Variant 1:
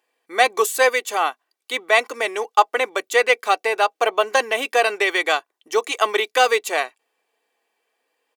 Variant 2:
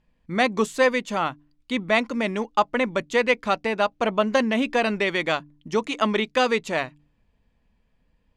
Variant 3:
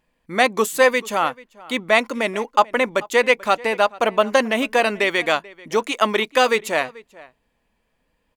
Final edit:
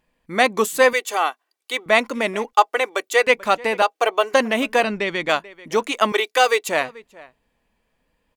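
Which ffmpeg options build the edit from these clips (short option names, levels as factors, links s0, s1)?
-filter_complex "[0:a]asplit=4[s0][s1][s2][s3];[2:a]asplit=6[s4][s5][s6][s7][s8][s9];[s4]atrim=end=0.932[s10];[s0]atrim=start=0.928:end=1.862[s11];[s5]atrim=start=1.858:end=2.532[s12];[s1]atrim=start=2.528:end=3.272[s13];[s6]atrim=start=3.268:end=3.822[s14];[s2]atrim=start=3.818:end=4.342[s15];[s7]atrim=start=4.338:end=4.842[s16];[1:a]atrim=start=4.838:end=5.292[s17];[s8]atrim=start=5.288:end=6.122[s18];[s3]atrim=start=6.118:end=6.692[s19];[s9]atrim=start=6.688[s20];[s10][s11]acrossfade=d=0.004:c1=hsin:c2=hsin[s21];[s21][s12]acrossfade=d=0.004:c1=hsin:c2=hsin[s22];[s22][s13]acrossfade=d=0.004:c1=hsin:c2=hsin[s23];[s23][s14]acrossfade=d=0.004:c1=hsin:c2=hsin[s24];[s24][s15]acrossfade=d=0.004:c1=hsin:c2=hsin[s25];[s25][s16]acrossfade=d=0.004:c1=hsin:c2=hsin[s26];[s26][s17]acrossfade=d=0.004:c1=hsin:c2=hsin[s27];[s27][s18]acrossfade=d=0.004:c1=hsin:c2=hsin[s28];[s28][s19]acrossfade=d=0.004:c1=hsin:c2=hsin[s29];[s29][s20]acrossfade=d=0.004:c1=hsin:c2=hsin"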